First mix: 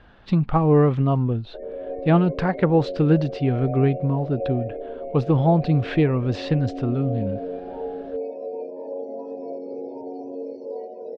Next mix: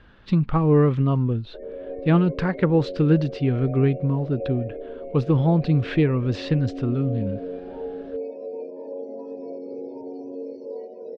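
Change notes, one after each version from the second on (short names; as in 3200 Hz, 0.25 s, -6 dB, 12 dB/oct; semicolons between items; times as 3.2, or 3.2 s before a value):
master: add bell 730 Hz -8.5 dB 0.57 oct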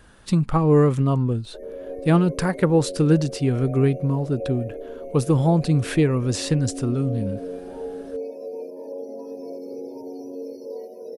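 speech: add bell 720 Hz +3 dB 1.6 oct; master: remove LPF 3700 Hz 24 dB/oct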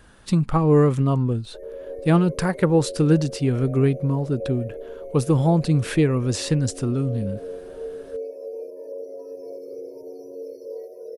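background: add fixed phaser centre 850 Hz, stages 6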